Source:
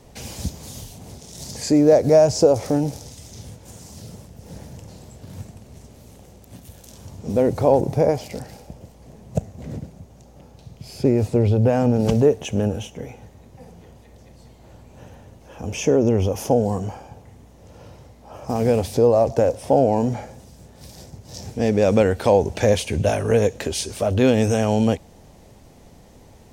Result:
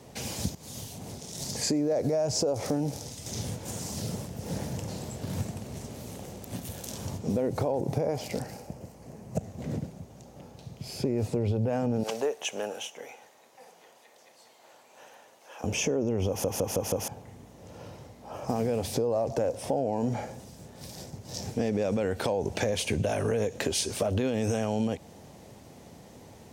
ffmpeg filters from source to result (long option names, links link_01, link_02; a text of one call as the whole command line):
ffmpeg -i in.wav -filter_complex "[0:a]asettb=1/sr,asplit=3[link_01][link_02][link_03];[link_01]atrim=end=3.264[link_04];[link_02]atrim=start=3.26:end=7.18,asetpts=PTS-STARTPTS,afade=type=in:duration=0.004:curve=qsin,afade=type=out:start_time=3.916:duration=0.004:curve=qsin,acontrast=53[link_05];[link_03]atrim=start=7.176[link_06];[link_04][link_05]acrossfade=duration=0.004:curve1=hsin:curve2=qsin[link_07];[link_07][link_06]acrossfade=duration=0.004:curve1=qsin:curve2=hsin,asettb=1/sr,asplit=3[link_08][link_09][link_10];[link_08]atrim=end=8.434[link_11];[link_09]atrim=start=8.43:end=9.38,asetpts=PTS-STARTPTS,afade=type=in:duration=0.004:curve=qsin,afade=type=out:start_time=0.946:duration=0.004:curve=qsin,equalizer=frequency=3500:width_type=o:width=0.43:gain=-7.5[link_12];[link_10]atrim=start=9.376[link_13];[link_11][link_12]acrossfade=duration=0.004:curve1=hsin:curve2=qsin[link_14];[link_14][link_13]acrossfade=duration=0.004:curve1=qsin:curve2=hsin,asettb=1/sr,asplit=3[link_15][link_16][link_17];[link_15]atrim=end=12.034[link_18];[link_16]atrim=start=12.03:end=15.64,asetpts=PTS-STARTPTS,afade=type=in:duration=0.004:curve=qsin,afade=type=out:start_time=3.606:duration=0.004:curve=qsin,highpass=730[link_19];[link_17]atrim=start=15.636[link_20];[link_18][link_19]acrossfade=duration=0.004:curve1=hsin:curve2=qsin[link_21];[link_21][link_20]acrossfade=duration=0.004:curve1=qsin:curve2=hsin,asplit=7[link_22][link_23][link_24][link_25][link_26][link_27][link_28];[link_22]atrim=end=0.55,asetpts=PTS-STARTPTS,afade=type=out:start_time=0.546:duration=0.004:curve=hsin:silence=0.199526[link_29];[link_23]atrim=start=0.55:end=16.442,asetpts=PTS-STARTPTS,afade=type=in:duration=0.48:curve=qsin:silence=0.199526[link_30];[link_24]atrim=start=16.278:end=16.442[link_31];[link_25]atrim=start=16.278:end=16.442[link_32];[link_26]atrim=start=16.278:end=16.442[link_33];[link_27]atrim=start=16.278:end=16.442[link_34];[link_28]atrim=start=17.078[link_35];[link_29][link_30]concat=n=2:v=0:a=1[link_36];[link_36][link_31]acrossfade=duration=0.004:curve1=hsin:curve2=hsin[link_37];[link_37][link_32]acrossfade=duration=0.004:curve1=hsin:curve2=hsin[link_38];[link_38][link_33]acrossfade=duration=0.004:curve1=hsin:curve2=hsin[link_39];[link_39][link_34]acrossfade=duration=0.004:curve1=hsin:curve2=hsin[link_40];[link_40][link_35]acrossfade=duration=0.004:curve1=hsin:curve2=hsin,highpass=100,alimiter=limit=-13.5dB:level=0:latency=1:release=68,acompressor=threshold=-24dB:ratio=6" out.wav